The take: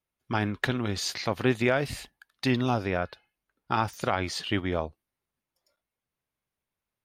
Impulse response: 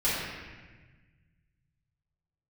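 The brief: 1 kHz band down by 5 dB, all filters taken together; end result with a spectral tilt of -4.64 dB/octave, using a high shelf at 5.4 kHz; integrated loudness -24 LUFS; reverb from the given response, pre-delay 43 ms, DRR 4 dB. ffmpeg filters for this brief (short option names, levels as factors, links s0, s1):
-filter_complex "[0:a]equalizer=f=1000:t=o:g=-7.5,highshelf=f=5400:g=7.5,asplit=2[s0][s1];[1:a]atrim=start_sample=2205,adelay=43[s2];[s1][s2]afir=irnorm=-1:irlink=0,volume=0.158[s3];[s0][s3]amix=inputs=2:normalize=0,volume=1.68"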